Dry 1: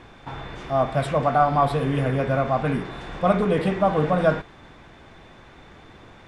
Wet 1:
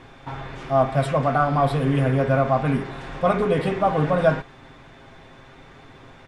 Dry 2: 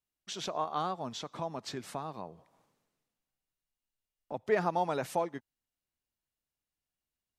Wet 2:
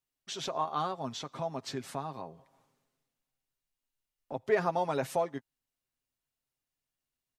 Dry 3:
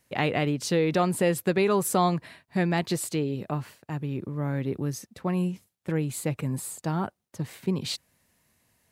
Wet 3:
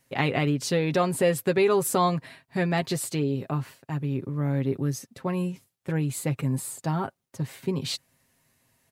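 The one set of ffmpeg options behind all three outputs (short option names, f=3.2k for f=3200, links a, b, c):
-af "aecho=1:1:7.5:0.48"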